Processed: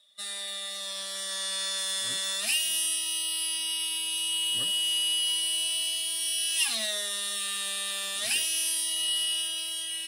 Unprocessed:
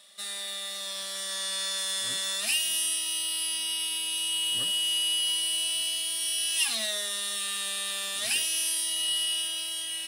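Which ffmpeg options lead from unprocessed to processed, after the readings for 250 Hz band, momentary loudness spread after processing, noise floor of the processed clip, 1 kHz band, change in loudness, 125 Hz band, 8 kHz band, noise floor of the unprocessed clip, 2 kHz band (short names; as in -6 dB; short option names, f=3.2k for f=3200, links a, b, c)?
-0.5 dB, 7 LU, -36 dBFS, -0.5 dB, 0.0 dB, n/a, 0.0 dB, -36 dBFS, 0.0 dB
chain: -af "afftdn=nr=15:nf=-49"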